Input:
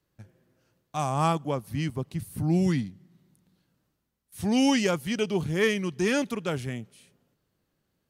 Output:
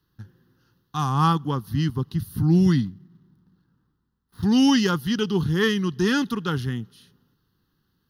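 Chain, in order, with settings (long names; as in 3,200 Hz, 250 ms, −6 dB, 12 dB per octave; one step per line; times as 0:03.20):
0:02.85–0:04.43: running median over 15 samples
phaser with its sweep stopped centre 2,300 Hz, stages 6
level +7.5 dB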